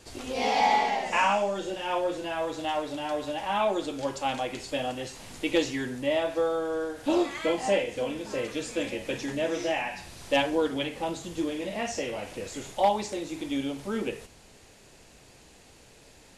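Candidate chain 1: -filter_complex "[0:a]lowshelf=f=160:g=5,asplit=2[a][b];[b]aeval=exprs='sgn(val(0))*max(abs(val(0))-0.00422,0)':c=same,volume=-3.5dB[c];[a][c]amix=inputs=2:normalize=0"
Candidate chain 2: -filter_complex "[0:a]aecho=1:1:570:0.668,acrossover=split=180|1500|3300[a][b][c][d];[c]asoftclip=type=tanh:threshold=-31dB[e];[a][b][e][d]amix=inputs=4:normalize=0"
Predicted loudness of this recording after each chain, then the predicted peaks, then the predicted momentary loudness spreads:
-24.5, -28.0 LUFS; -8.5, -11.0 dBFS; 9, 8 LU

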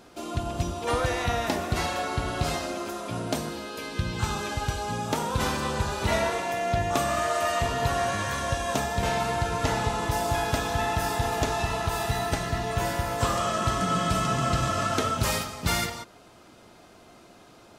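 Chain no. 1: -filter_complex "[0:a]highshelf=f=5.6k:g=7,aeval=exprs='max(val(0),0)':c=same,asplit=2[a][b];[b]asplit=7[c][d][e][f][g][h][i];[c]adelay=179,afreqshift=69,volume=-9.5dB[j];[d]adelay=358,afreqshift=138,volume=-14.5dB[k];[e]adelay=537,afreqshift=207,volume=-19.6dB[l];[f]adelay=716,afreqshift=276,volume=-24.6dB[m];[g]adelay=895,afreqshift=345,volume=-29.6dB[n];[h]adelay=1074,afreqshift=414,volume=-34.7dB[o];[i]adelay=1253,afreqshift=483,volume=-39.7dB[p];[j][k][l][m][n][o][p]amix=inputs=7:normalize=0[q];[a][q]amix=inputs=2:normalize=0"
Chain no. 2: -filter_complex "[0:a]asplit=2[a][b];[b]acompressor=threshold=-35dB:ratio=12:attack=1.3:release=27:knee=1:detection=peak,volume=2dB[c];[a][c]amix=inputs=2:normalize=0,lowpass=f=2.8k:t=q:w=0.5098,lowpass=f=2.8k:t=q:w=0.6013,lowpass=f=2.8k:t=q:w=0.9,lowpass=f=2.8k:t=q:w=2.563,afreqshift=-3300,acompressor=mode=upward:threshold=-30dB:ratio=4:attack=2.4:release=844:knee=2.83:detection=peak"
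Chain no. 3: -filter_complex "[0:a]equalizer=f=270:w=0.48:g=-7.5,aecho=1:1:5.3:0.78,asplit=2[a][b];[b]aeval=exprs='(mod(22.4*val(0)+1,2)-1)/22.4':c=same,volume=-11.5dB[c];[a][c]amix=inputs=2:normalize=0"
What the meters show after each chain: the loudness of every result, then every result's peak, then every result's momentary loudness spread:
-30.0, -22.5, -28.0 LUFS; -9.5, -10.0, -12.0 dBFS; 7, 7, 7 LU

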